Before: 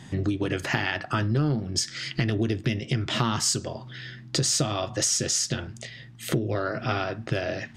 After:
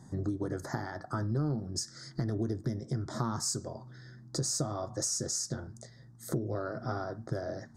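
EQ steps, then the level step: Butterworth band-stop 2.7 kHz, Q 0.7; -7.0 dB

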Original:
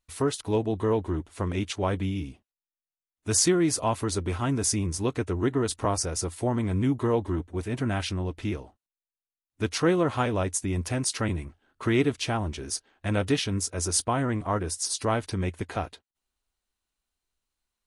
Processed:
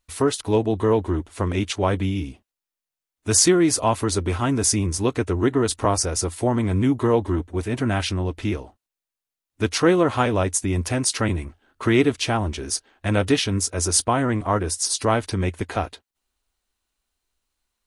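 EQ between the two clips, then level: peaking EQ 150 Hz -5 dB 0.48 oct; +6.0 dB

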